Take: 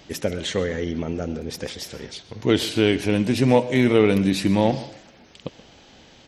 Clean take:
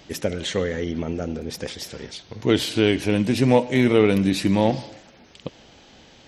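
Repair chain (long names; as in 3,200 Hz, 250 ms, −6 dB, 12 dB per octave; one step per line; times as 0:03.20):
echo removal 129 ms −18.5 dB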